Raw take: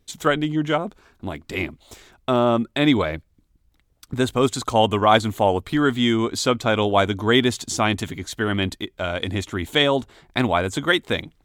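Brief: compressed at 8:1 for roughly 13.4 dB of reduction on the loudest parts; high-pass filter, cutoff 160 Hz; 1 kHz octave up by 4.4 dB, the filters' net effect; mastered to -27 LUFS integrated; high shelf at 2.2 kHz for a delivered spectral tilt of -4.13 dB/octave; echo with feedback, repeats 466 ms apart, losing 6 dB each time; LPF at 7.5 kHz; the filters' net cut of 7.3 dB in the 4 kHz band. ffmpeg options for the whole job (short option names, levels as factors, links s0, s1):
-af "highpass=160,lowpass=7500,equalizer=f=1000:t=o:g=7.5,highshelf=f=2200:g=-6.5,equalizer=f=4000:t=o:g=-4,acompressor=threshold=0.0794:ratio=8,aecho=1:1:466|932|1398|1864|2330|2796:0.501|0.251|0.125|0.0626|0.0313|0.0157,volume=1.12"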